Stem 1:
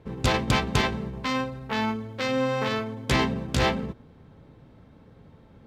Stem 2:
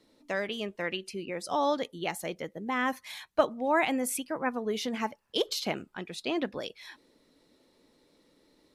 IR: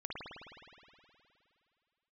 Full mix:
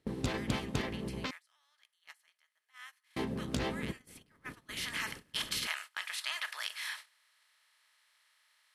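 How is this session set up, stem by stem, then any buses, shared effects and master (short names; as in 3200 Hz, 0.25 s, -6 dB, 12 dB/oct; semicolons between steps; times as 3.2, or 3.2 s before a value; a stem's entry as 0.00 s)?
+2.5 dB, 0.00 s, muted 1.31–3.16, no send, harmonic-percussive split harmonic -11 dB; compressor 2.5:1, threshold -43 dBFS, peak gain reduction 15.5 dB
4.23 s -18 dB -> 4.94 s -6.5 dB, 0.00 s, no send, per-bin compression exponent 0.4; HPF 1400 Hz 24 dB/oct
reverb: off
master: gate -45 dBFS, range -22 dB; bell 300 Hz +6 dB 2.2 oct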